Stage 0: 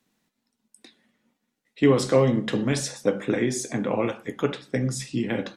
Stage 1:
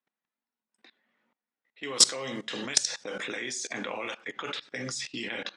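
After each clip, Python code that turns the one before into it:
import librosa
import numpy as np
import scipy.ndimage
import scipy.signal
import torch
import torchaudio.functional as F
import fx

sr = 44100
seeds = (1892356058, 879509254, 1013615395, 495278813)

y = fx.env_lowpass(x, sr, base_hz=1300.0, full_db=-18.0)
y = fx.weighting(y, sr, curve='ITU-R 468')
y = fx.level_steps(y, sr, step_db=20)
y = y * librosa.db_to_amplitude(5.0)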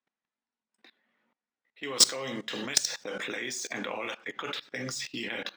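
y = scipy.signal.medfilt(x, 3)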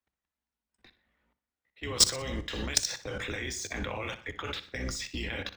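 y = fx.octave_divider(x, sr, octaves=2, level_db=4.0)
y = fx.echo_feedback(y, sr, ms=61, feedback_pct=37, wet_db=-14.5)
y = y * librosa.db_to_amplitude(-1.5)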